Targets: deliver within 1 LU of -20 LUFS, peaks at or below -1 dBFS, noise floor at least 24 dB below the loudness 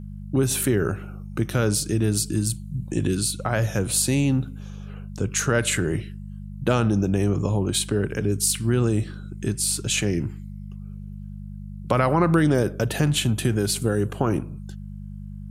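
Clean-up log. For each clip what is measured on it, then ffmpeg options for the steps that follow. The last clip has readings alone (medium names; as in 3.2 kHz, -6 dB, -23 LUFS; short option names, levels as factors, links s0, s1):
hum 50 Hz; highest harmonic 200 Hz; hum level -34 dBFS; loudness -23.5 LUFS; peak level -5.5 dBFS; loudness target -20.0 LUFS
-> -af "bandreject=f=50:t=h:w=4,bandreject=f=100:t=h:w=4,bandreject=f=150:t=h:w=4,bandreject=f=200:t=h:w=4"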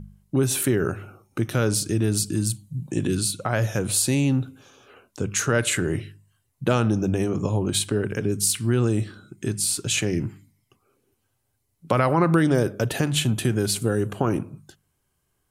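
hum not found; loudness -23.5 LUFS; peak level -5.5 dBFS; loudness target -20.0 LUFS
-> -af "volume=1.5"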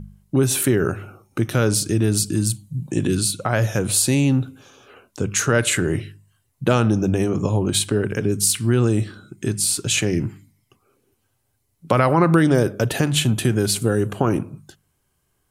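loudness -20.0 LUFS; peak level -2.0 dBFS; noise floor -69 dBFS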